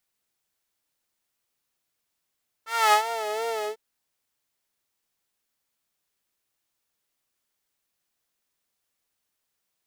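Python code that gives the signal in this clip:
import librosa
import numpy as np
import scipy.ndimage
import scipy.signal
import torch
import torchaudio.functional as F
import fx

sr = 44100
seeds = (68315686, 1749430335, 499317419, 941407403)

y = fx.sub_patch_vibrato(sr, seeds[0], note=69, wave='saw', wave2='saw', interval_st=7, detune_cents=16, level2_db=-9.0, sub_db=-21.0, noise_db=-30.0, kind='highpass', cutoff_hz=320.0, q=2.6, env_oct=2.0, env_decay_s=0.64, env_sustain_pct=40, attack_ms=262.0, decay_s=0.1, sustain_db=-14.0, release_s=0.11, note_s=0.99, lfo_hz=2.8, vibrato_cents=83)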